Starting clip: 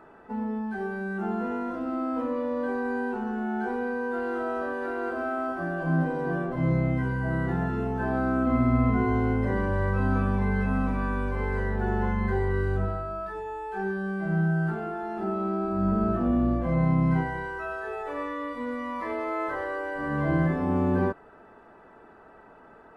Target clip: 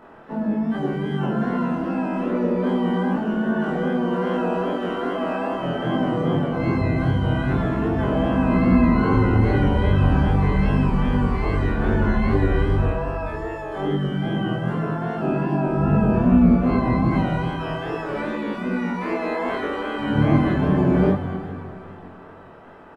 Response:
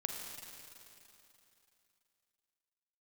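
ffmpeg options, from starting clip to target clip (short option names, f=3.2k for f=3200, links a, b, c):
-filter_complex "[0:a]asplit=2[a][b];[b]adelay=367,lowpass=f=1.7k:p=1,volume=-22.5dB,asplit=2[c][d];[d]adelay=367,lowpass=f=1.7k:p=1,volume=0.3[e];[a][c][e]amix=inputs=3:normalize=0,asplit=4[f][g][h][i];[g]asetrate=33038,aresample=44100,atempo=1.33484,volume=-3dB[j];[h]asetrate=55563,aresample=44100,atempo=0.793701,volume=-13dB[k];[i]asetrate=88200,aresample=44100,atempo=0.5,volume=-16dB[l];[f][j][k][l]amix=inputs=4:normalize=0,asplit=2[m][n];[1:a]atrim=start_sample=2205,adelay=28[o];[n][o]afir=irnorm=-1:irlink=0,volume=-1dB[p];[m][p]amix=inputs=2:normalize=0,flanger=delay=19.5:depth=7.2:speed=2.5,volume=5dB"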